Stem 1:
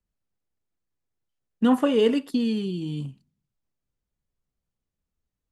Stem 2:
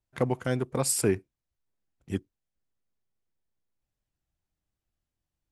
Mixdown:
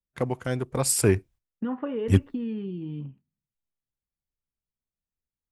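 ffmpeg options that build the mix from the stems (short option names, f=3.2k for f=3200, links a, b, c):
-filter_complex "[0:a]lowpass=f=2.3k:w=0.5412,lowpass=f=2.3k:w=1.3066,bandreject=f=700:w=12,acompressor=threshold=-24dB:ratio=4,volume=-2.5dB[a];[1:a]agate=range=-33dB:threshold=-51dB:ratio=3:detection=peak,asubboost=boost=7:cutoff=110,dynaudnorm=f=330:g=7:m=10dB,volume=0.5dB[b];[a][b]amix=inputs=2:normalize=0,agate=range=-7dB:threshold=-49dB:ratio=16:detection=peak,aeval=exprs='0.447*(cos(1*acos(clip(val(0)/0.447,-1,1)))-cos(1*PI/2))+0.0224*(cos(3*acos(clip(val(0)/0.447,-1,1)))-cos(3*PI/2))':c=same"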